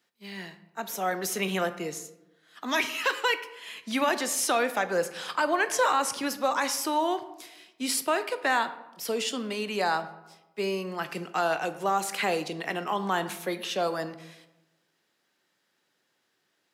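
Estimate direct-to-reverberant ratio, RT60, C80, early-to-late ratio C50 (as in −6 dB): 10.5 dB, 1.0 s, 15.5 dB, 13.5 dB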